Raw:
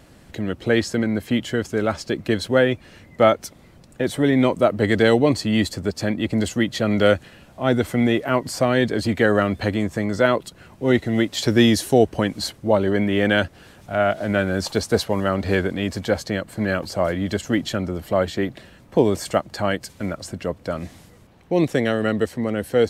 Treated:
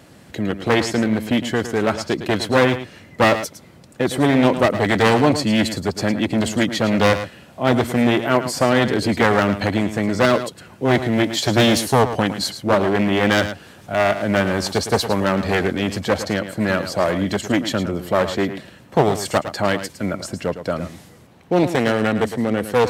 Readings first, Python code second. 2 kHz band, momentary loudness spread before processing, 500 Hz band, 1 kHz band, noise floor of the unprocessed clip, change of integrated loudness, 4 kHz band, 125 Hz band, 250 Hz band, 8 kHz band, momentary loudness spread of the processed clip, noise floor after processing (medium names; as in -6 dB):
+3.0 dB, 9 LU, +1.0 dB, +5.5 dB, -49 dBFS, +2.0 dB, +4.0 dB, +2.0 dB, +1.5 dB, +4.0 dB, 9 LU, -46 dBFS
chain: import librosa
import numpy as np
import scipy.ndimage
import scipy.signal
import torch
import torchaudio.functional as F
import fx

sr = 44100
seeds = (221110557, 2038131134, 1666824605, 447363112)

y = np.minimum(x, 2.0 * 10.0 ** (-16.0 / 20.0) - x)
y = scipy.signal.sosfilt(scipy.signal.butter(2, 95.0, 'highpass', fs=sr, output='sos'), y)
y = y + 10.0 ** (-11.0 / 20.0) * np.pad(y, (int(109 * sr / 1000.0), 0))[:len(y)]
y = y * librosa.db_to_amplitude(3.5)